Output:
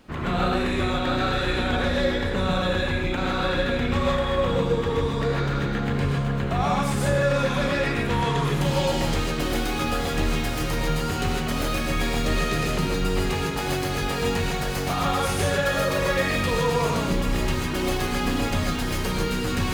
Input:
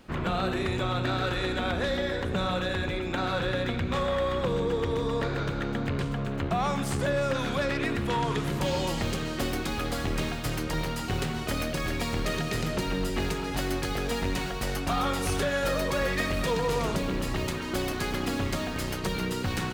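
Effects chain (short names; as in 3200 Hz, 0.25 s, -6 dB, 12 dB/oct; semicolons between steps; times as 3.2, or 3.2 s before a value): non-linear reverb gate 0.18 s rising, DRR -3 dB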